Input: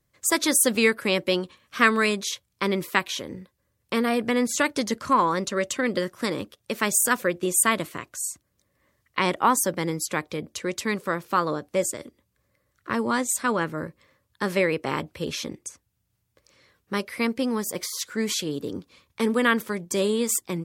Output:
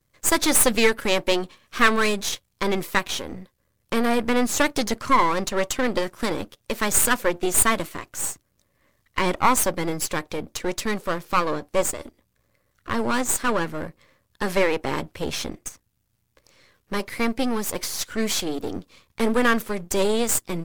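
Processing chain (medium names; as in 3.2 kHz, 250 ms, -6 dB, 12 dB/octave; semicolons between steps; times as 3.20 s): partial rectifier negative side -12 dB; trim +6 dB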